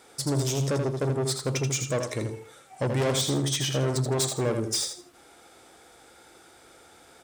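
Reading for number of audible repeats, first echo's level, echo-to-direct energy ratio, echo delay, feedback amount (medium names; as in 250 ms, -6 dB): 3, -6.5 dB, -6.5 dB, 81 ms, 23%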